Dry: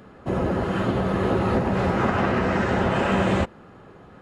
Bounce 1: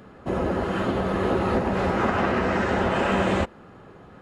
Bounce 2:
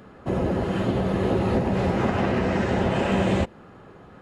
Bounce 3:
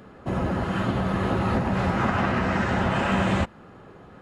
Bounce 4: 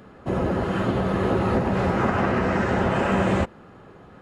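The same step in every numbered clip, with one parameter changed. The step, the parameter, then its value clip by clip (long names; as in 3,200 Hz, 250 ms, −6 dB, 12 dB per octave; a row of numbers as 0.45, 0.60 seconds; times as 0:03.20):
dynamic equaliser, frequency: 130, 1,300, 430, 3,600 Hertz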